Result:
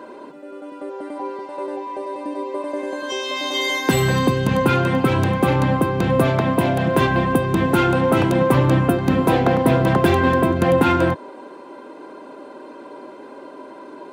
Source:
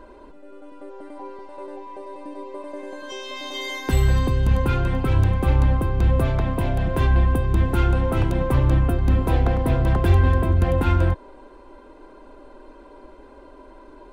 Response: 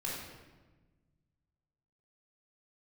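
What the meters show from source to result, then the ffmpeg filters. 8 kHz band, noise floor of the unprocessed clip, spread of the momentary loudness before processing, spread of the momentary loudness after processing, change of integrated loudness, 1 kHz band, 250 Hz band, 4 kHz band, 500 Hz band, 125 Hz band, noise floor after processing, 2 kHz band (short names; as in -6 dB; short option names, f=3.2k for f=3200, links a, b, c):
n/a, -46 dBFS, 18 LU, 22 LU, +2.0 dB, +8.5 dB, +8.0 dB, +8.5 dB, +8.5 dB, -1.0 dB, -40 dBFS, +8.5 dB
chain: -af "highpass=f=140:w=0.5412,highpass=f=140:w=1.3066,volume=8.5dB"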